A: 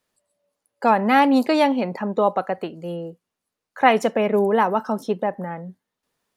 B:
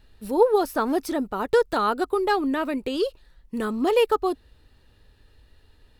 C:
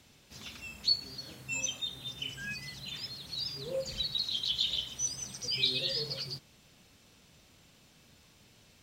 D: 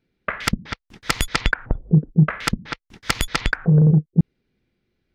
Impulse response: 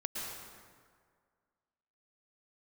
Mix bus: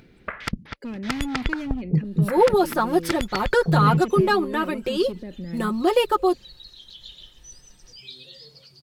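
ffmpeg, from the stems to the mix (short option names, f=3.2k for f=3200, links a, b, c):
-filter_complex "[0:a]firequalizer=gain_entry='entry(100,0);entry(260,7);entry(860,-25);entry(2200,-1);entry(7400,-8)':delay=0.05:min_phase=1,volume=-1.5dB[a];[1:a]agate=range=-7dB:threshold=-54dB:ratio=16:detection=peak,aecho=1:1:5.6:0.77,adelay=2000,volume=0.5dB[b];[2:a]adelay=2450,volume=-12dB[c];[3:a]highshelf=f=5.4k:g=-8.5,acompressor=mode=upward:threshold=-27dB:ratio=2.5,volume=-6dB[d];[a][c]amix=inputs=2:normalize=0,volume=17dB,asoftclip=hard,volume=-17dB,alimiter=level_in=3.5dB:limit=-24dB:level=0:latency=1:release=58,volume=-3.5dB,volume=0dB[e];[b][d][e]amix=inputs=3:normalize=0"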